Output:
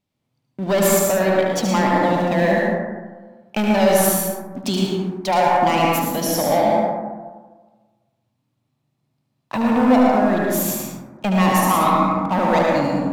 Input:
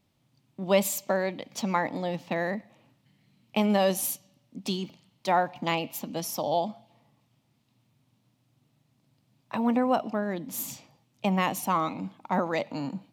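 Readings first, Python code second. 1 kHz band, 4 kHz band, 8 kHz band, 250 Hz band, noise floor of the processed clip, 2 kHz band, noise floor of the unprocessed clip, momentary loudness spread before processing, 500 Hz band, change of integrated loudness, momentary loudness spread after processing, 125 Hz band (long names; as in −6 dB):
+11.5 dB, +8.5 dB, +11.0 dB, +11.5 dB, −73 dBFS, +10.5 dB, −71 dBFS, 12 LU, +11.0 dB, +11.0 dB, 12 LU, +11.5 dB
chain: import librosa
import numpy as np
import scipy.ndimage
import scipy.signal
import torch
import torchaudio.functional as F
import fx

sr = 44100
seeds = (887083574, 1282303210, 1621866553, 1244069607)

y = fx.leveller(x, sr, passes=3)
y = y + 10.0 ** (-6.0 / 20.0) * np.pad(y, (int(74 * sr / 1000.0), 0))[:len(y)]
y = fx.rev_plate(y, sr, seeds[0], rt60_s=1.4, hf_ratio=0.25, predelay_ms=95, drr_db=-2.0)
y = y * librosa.db_to_amplitude(-2.5)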